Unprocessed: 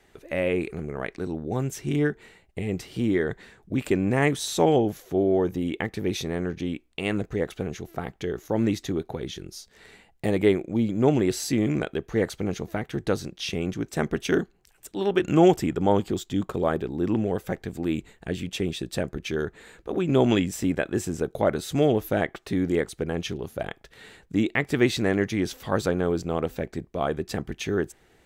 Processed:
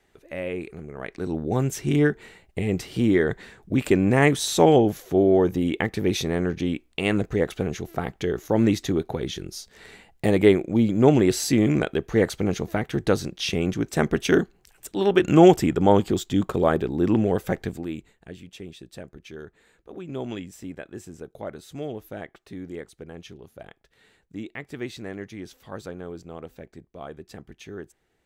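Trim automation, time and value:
0.93 s -5.5 dB
1.36 s +4 dB
17.68 s +4 dB
17.86 s -5 dB
18.42 s -12 dB

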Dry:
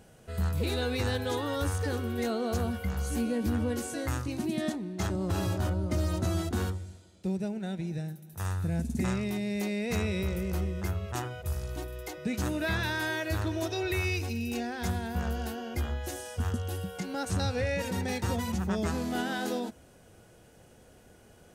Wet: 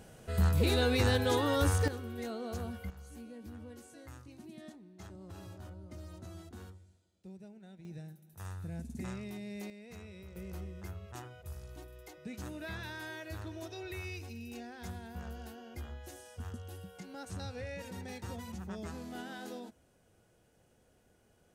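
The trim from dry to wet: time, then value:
+2 dB
from 1.88 s -9 dB
from 2.90 s -18.5 dB
from 7.85 s -11 dB
from 9.70 s -19.5 dB
from 10.36 s -12 dB

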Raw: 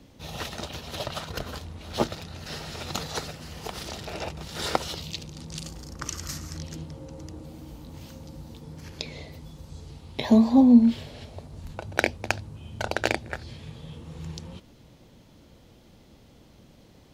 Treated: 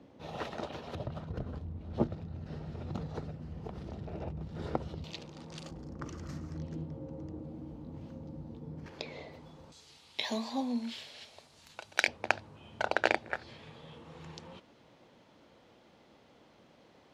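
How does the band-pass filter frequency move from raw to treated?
band-pass filter, Q 0.54
530 Hz
from 0.95 s 130 Hz
from 5.04 s 730 Hz
from 5.71 s 270 Hz
from 8.86 s 800 Hz
from 9.72 s 4.1 kHz
from 12.08 s 1.1 kHz

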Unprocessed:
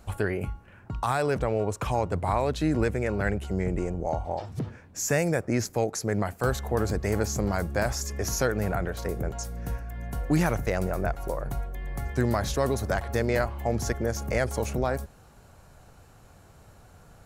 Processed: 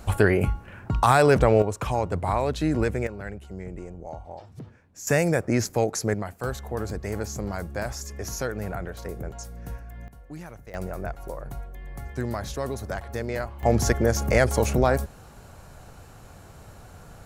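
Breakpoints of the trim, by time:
+8.5 dB
from 1.62 s +1 dB
from 3.07 s -9 dB
from 5.07 s +3 dB
from 6.14 s -4 dB
from 10.08 s -16.5 dB
from 10.74 s -4.5 dB
from 13.63 s +6.5 dB

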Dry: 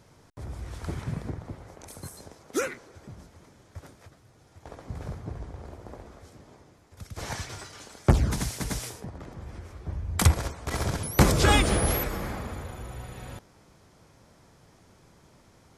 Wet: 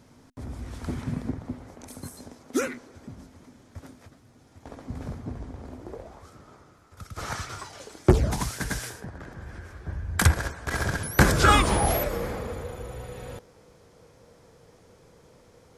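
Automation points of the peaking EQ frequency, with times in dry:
peaking EQ +13.5 dB 0.29 oct
5.78 s 250 Hz
6.28 s 1.3 kHz
7.57 s 1.3 kHz
8.01 s 270 Hz
8.57 s 1.6 kHz
11.36 s 1.6 kHz
12.18 s 480 Hz

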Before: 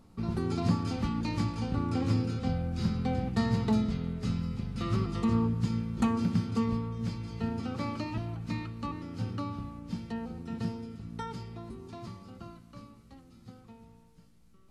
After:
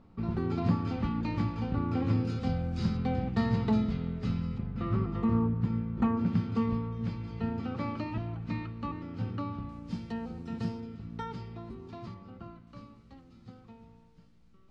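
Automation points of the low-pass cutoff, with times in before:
2.9 kHz
from 2.25 s 6.1 kHz
from 2.97 s 3.8 kHz
from 4.58 s 1.8 kHz
from 6.26 s 3.1 kHz
from 9.69 s 6.6 kHz
from 10.80 s 4 kHz
from 12.14 s 2.6 kHz
from 12.67 s 4.6 kHz

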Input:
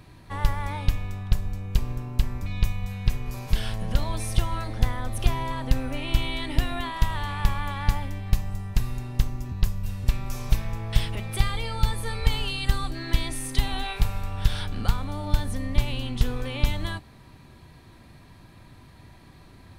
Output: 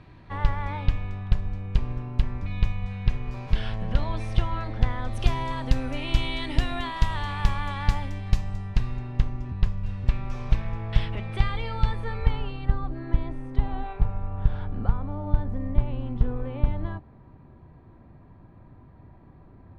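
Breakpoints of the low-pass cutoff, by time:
4.86 s 3 kHz
5.33 s 6.8 kHz
8.30 s 6.8 kHz
9.03 s 2.7 kHz
11.84 s 2.7 kHz
12.75 s 1 kHz

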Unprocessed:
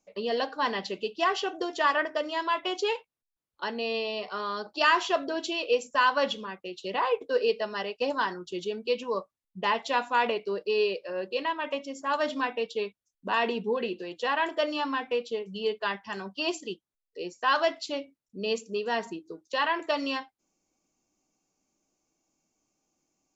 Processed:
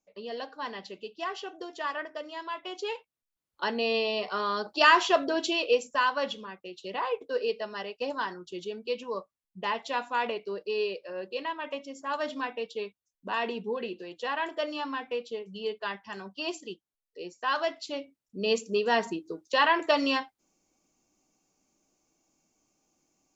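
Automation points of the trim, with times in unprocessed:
2.63 s -8.5 dB
3.68 s +3 dB
5.56 s +3 dB
6.15 s -4 dB
17.76 s -4 dB
18.65 s +4 dB

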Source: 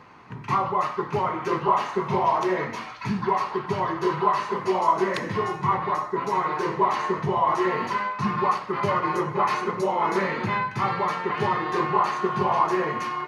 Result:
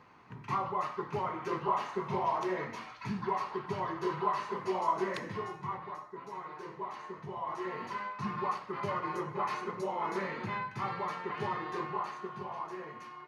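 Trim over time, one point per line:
5.12 s -9.5 dB
6.06 s -18.5 dB
7.15 s -18.5 dB
8.10 s -11 dB
11.64 s -11 dB
12.50 s -18.5 dB

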